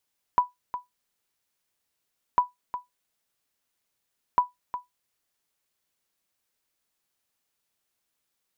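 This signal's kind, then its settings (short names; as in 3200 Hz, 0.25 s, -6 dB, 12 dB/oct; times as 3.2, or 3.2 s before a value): sonar ping 987 Hz, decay 0.16 s, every 2.00 s, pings 3, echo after 0.36 s, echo -12 dB -11 dBFS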